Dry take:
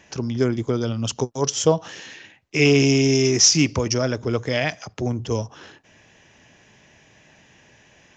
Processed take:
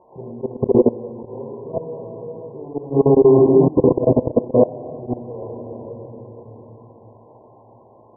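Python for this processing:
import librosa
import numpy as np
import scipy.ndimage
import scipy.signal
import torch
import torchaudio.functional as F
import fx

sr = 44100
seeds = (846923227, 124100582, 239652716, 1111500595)

y = x + 0.5 * 10.0 ** (-12.0 / 20.0) * np.diff(np.sign(x), prepend=np.sign(x[:1]))
y = fx.leveller(y, sr, passes=5)
y = fx.room_shoebox(y, sr, seeds[0], volume_m3=170.0, walls='hard', distance_m=0.95)
y = fx.level_steps(y, sr, step_db=20)
y = fx.highpass(y, sr, hz=59.0, slope=6)
y = fx.auto_swell(y, sr, attack_ms=105.0)
y = fx.brickwall_lowpass(y, sr, high_hz=1100.0)
y = fx.peak_eq(y, sr, hz=470.0, db=9.0, octaves=1.1)
y = y * librosa.db_to_amplitude(-15.0)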